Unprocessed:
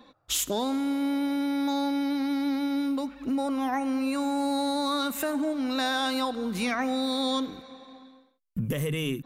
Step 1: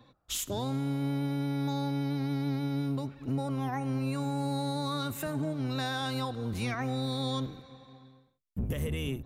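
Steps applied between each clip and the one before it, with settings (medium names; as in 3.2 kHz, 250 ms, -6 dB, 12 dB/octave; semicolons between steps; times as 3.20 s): octave divider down 1 oct, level +2 dB; trim -6.5 dB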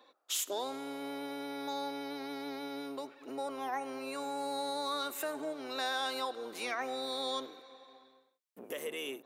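high-pass 370 Hz 24 dB/octave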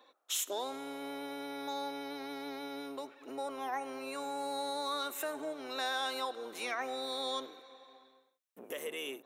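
bass shelf 240 Hz -5 dB; band-stop 4.7 kHz, Q 8.1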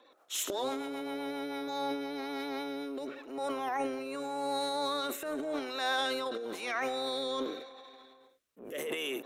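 rotary cabinet horn 8 Hz, later 0.9 Hz, at 1.13 s; transient shaper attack -8 dB, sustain +10 dB; treble shelf 4.5 kHz -5 dB; trim +6.5 dB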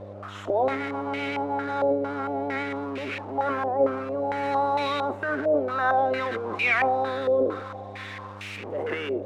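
zero-crossing glitches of -26.5 dBFS; mains buzz 100 Hz, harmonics 30, -49 dBFS -6 dB/octave; step-sequenced low-pass 4.4 Hz 570–2400 Hz; trim +5 dB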